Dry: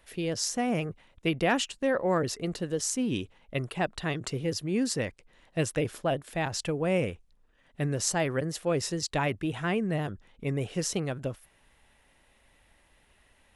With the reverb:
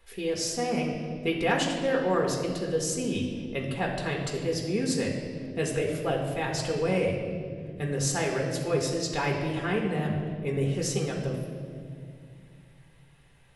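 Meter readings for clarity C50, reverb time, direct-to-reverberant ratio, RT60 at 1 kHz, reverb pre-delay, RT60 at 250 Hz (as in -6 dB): 4.0 dB, 2.2 s, -1.5 dB, 1.8 s, 4 ms, 3.2 s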